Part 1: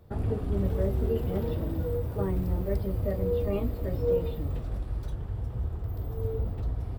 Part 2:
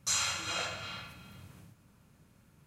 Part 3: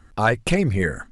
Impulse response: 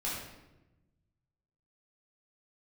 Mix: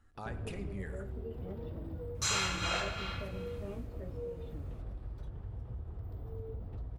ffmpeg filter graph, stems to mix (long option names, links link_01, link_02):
-filter_complex "[0:a]lowpass=frequency=3300:poles=1,acompressor=threshold=-30dB:ratio=6,adelay=150,volume=-7.5dB[link_01];[1:a]highshelf=frequency=5000:gain=-10,adelay=2150,volume=3dB[link_02];[2:a]acompressor=threshold=-29dB:ratio=2.5,volume=-17.5dB,asplit=2[link_03][link_04];[link_04]volume=-12dB[link_05];[3:a]atrim=start_sample=2205[link_06];[link_05][link_06]afir=irnorm=-1:irlink=0[link_07];[link_01][link_02][link_03][link_07]amix=inputs=4:normalize=0"